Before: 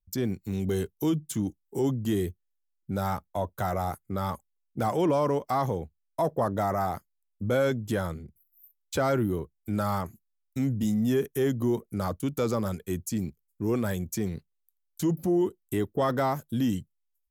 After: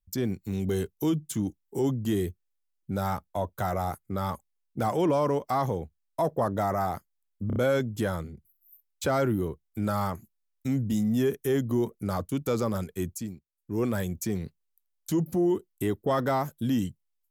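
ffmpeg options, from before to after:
-filter_complex "[0:a]asplit=6[a][b][c][d][e][f];[a]atrim=end=7.502[g];[b]atrim=start=7.468:end=7.502[h];[c]atrim=start=7.468:end=7.502[i];[d]atrim=start=7.468:end=13.33,asetpts=PTS-STARTPTS,afade=t=out:st=5.512:d=0.35:silence=0.0668344[j];[e]atrim=start=13.33:end=13.39,asetpts=PTS-STARTPTS,volume=-23.5dB[k];[f]atrim=start=13.39,asetpts=PTS-STARTPTS,afade=t=in:d=0.35:silence=0.0668344[l];[g][h]acrossfade=d=0.004:c1=hsin:c2=hsin[m];[m][i]acrossfade=d=0.004:c1=hsin:c2=hsin[n];[j][k][l]concat=n=3:v=0:a=1[o];[n][o]acrossfade=d=0.004:c1=hsin:c2=hsin"

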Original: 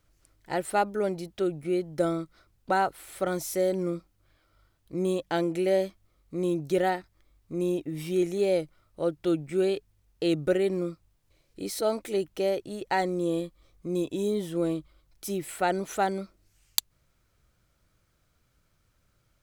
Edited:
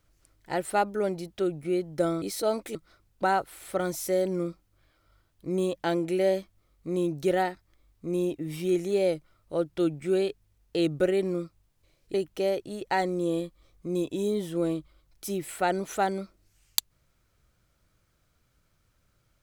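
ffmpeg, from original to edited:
-filter_complex "[0:a]asplit=4[a][b][c][d];[a]atrim=end=2.222[e];[b]atrim=start=11.608:end=12.142[f];[c]atrim=start=2.218:end=11.612[g];[d]atrim=start=12.138[h];[e][f]acrossfade=d=0.004:c1=hsin:c2=hsin[i];[i][g]acrossfade=d=0.004:c1=hsin:c2=hsin[j];[j][h]acrossfade=d=0.004:c1=hsin:c2=hsin"

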